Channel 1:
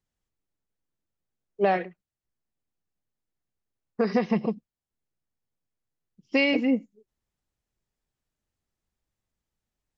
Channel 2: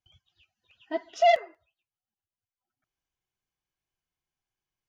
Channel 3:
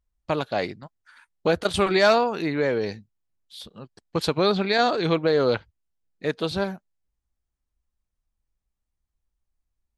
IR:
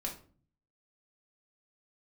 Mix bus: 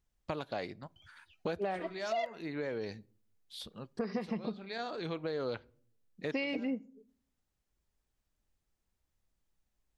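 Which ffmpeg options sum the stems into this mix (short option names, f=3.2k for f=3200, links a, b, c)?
-filter_complex "[0:a]volume=-1dB,asplit=3[a][b][c];[b]volume=-20.5dB[d];[1:a]adelay=900,volume=-1.5dB[e];[2:a]volume=-5dB,asplit=2[f][g];[g]volume=-22dB[h];[c]apad=whole_len=439769[i];[f][i]sidechaincompress=threshold=-42dB:ratio=3:attack=5.5:release=694[j];[3:a]atrim=start_sample=2205[k];[d][h]amix=inputs=2:normalize=0[l];[l][k]afir=irnorm=-1:irlink=0[m];[a][e][j][m]amix=inputs=4:normalize=0,acompressor=threshold=-36dB:ratio=3"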